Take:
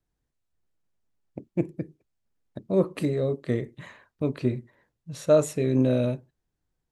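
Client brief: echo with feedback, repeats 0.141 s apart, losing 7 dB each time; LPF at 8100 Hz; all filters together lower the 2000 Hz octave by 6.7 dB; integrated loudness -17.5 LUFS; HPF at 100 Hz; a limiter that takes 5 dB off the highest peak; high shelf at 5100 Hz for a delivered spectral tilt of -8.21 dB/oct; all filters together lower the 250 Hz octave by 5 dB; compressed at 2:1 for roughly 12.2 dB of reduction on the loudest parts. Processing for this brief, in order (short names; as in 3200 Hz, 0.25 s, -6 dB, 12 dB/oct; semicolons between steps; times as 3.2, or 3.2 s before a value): HPF 100 Hz; LPF 8100 Hz; bell 250 Hz -6 dB; bell 2000 Hz -7 dB; high shelf 5100 Hz -8 dB; compressor 2:1, threshold -38 dBFS; limiter -27 dBFS; feedback echo 0.141 s, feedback 45%, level -7 dB; gain +22 dB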